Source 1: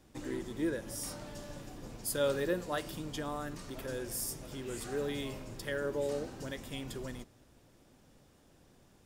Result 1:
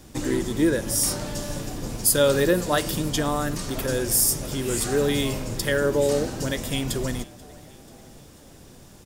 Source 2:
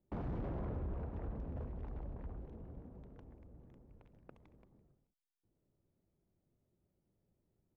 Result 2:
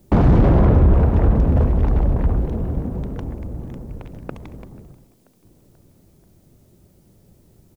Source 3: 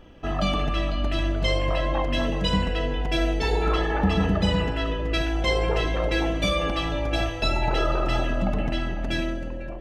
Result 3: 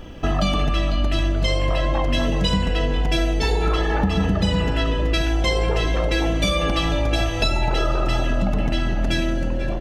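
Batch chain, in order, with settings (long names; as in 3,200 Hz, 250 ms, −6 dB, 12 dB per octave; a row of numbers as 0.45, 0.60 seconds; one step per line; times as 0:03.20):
bass and treble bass +3 dB, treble +6 dB
echo with shifted repeats 486 ms, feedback 58%, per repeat +57 Hz, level −23.5 dB
downward compressor 4 to 1, threshold −27 dBFS
normalise the peak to −6 dBFS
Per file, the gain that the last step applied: +12.5, +25.0, +9.5 decibels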